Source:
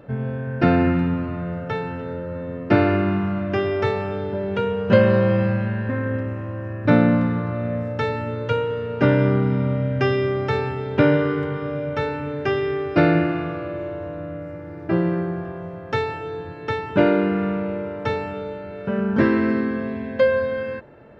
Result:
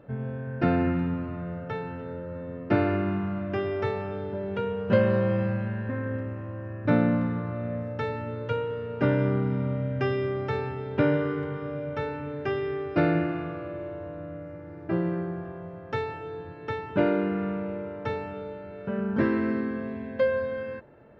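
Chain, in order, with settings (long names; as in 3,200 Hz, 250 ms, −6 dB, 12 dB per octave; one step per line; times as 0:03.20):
high-shelf EQ 3,600 Hz −6.5 dB
level −6.5 dB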